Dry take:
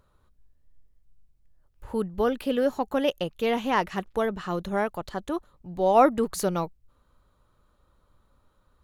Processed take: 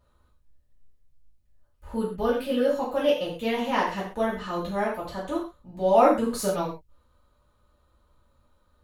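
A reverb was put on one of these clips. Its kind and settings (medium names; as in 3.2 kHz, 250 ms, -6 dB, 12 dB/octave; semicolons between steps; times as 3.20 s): gated-style reverb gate 160 ms falling, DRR -7.5 dB; trim -8 dB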